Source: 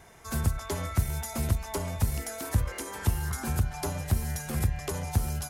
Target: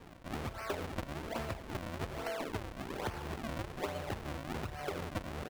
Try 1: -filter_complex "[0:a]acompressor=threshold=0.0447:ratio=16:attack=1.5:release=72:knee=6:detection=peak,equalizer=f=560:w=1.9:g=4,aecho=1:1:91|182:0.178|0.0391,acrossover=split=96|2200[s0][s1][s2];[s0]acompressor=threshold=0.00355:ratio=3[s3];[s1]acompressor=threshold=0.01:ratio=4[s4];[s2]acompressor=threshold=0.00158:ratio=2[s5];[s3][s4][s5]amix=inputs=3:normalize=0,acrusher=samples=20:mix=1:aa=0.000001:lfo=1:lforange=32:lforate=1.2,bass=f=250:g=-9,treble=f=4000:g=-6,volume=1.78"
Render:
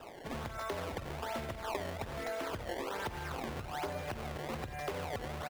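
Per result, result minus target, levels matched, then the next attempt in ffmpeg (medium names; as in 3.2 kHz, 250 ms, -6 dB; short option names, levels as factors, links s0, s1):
compression: peak gain reduction +12.5 dB; decimation with a swept rate: distortion -4 dB
-filter_complex "[0:a]equalizer=f=560:w=1.9:g=4,aecho=1:1:91|182:0.178|0.0391,acrossover=split=96|2200[s0][s1][s2];[s0]acompressor=threshold=0.00355:ratio=3[s3];[s1]acompressor=threshold=0.01:ratio=4[s4];[s2]acompressor=threshold=0.00158:ratio=2[s5];[s3][s4][s5]amix=inputs=3:normalize=0,acrusher=samples=20:mix=1:aa=0.000001:lfo=1:lforange=32:lforate=1.2,bass=f=250:g=-9,treble=f=4000:g=-6,volume=1.78"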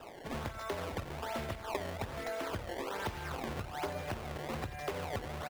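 decimation with a swept rate: distortion -5 dB
-filter_complex "[0:a]equalizer=f=560:w=1.9:g=4,aecho=1:1:91|182:0.178|0.0391,acrossover=split=96|2200[s0][s1][s2];[s0]acompressor=threshold=0.00355:ratio=3[s3];[s1]acompressor=threshold=0.01:ratio=4[s4];[s2]acompressor=threshold=0.00158:ratio=2[s5];[s3][s4][s5]amix=inputs=3:normalize=0,acrusher=samples=60:mix=1:aa=0.000001:lfo=1:lforange=96:lforate=1.2,bass=f=250:g=-9,treble=f=4000:g=-6,volume=1.78"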